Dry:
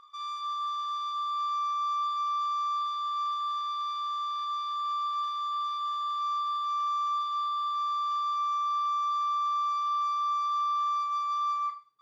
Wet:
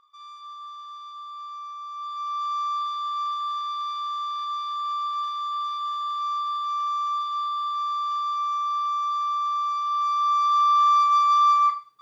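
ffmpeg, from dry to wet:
-af "volume=11.5dB,afade=t=in:st=1.92:d=0.64:silence=0.316228,afade=t=in:st=9.87:d=1.18:silence=0.375837"

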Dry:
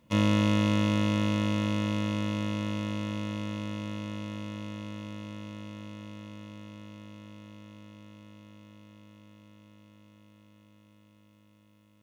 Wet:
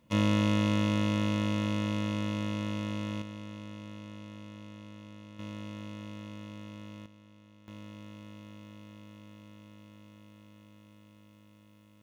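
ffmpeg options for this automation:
-af "asetnsamples=n=441:p=0,asendcmd='3.22 volume volume -8.5dB;5.39 volume volume 0.5dB;7.06 volume volume -9.5dB;7.68 volume volume 3dB',volume=-2dB"

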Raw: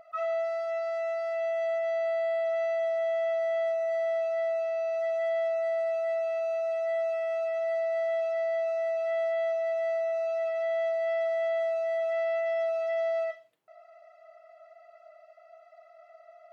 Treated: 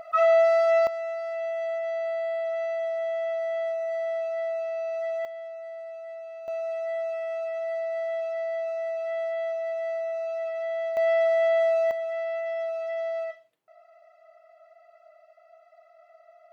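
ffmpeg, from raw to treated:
-af "asetnsamples=n=441:p=0,asendcmd='0.87 volume volume -0.5dB;5.25 volume volume -10dB;6.48 volume volume -1dB;10.97 volume volume 6.5dB;11.91 volume volume -1.5dB',volume=11dB"

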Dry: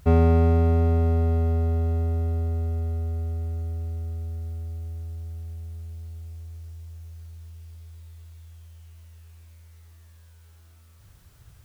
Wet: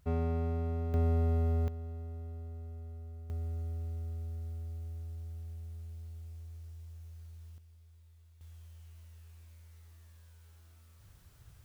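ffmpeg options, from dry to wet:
-af "asetnsamples=n=441:p=0,asendcmd='0.94 volume volume -7dB;1.68 volume volume -17.5dB;3.3 volume volume -7.5dB;7.58 volume volume -15dB;8.41 volume volume -5.5dB',volume=-14.5dB"

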